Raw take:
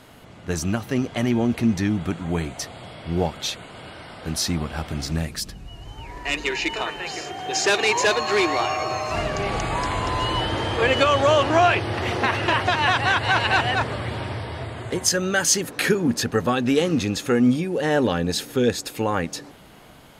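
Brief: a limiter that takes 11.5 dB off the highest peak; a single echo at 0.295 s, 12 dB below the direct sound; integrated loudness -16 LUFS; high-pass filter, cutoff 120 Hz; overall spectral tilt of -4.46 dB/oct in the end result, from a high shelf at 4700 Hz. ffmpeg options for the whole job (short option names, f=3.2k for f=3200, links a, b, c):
-af "highpass=120,highshelf=f=4.7k:g=-9,alimiter=limit=-17.5dB:level=0:latency=1,aecho=1:1:295:0.251,volume=11.5dB"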